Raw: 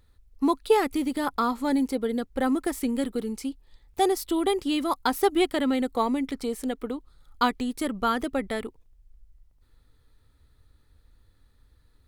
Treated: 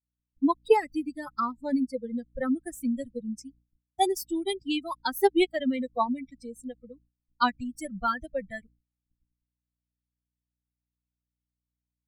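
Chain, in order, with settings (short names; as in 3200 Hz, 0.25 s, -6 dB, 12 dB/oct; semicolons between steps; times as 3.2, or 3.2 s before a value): per-bin expansion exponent 3; hum 60 Hz, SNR 35 dB; expander -55 dBFS; gain +3.5 dB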